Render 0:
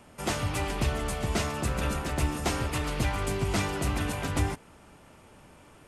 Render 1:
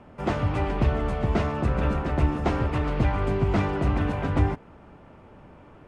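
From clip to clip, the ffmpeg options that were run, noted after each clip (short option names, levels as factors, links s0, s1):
-af "lowpass=f=1300:p=1,aemphasis=mode=reproduction:type=50fm,volume=1.88"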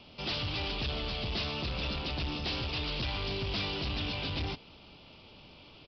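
-af "aexciter=amount=13.9:drive=8.7:freq=2800,aresample=11025,asoftclip=type=tanh:threshold=0.0668,aresample=44100,volume=0.447"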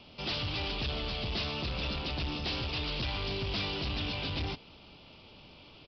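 -af anull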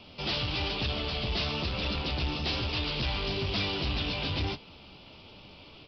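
-af "flanger=delay=9.7:depth=6.2:regen=-40:speed=1.1:shape=sinusoidal,volume=2.24"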